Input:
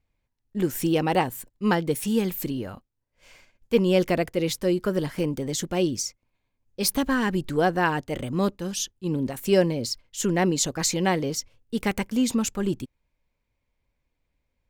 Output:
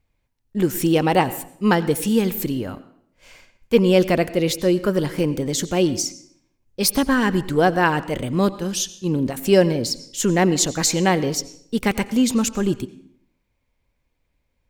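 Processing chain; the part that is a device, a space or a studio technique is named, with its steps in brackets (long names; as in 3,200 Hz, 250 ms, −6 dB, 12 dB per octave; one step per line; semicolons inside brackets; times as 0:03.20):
filtered reverb send (on a send: high-pass filter 190 Hz + low-pass filter 8,500 Hz 12 dB per octave + convolution reverb RT60 0.65 s, pre-delay 84 ms, DRR 15.5 dB)
on the sum: level +5 dB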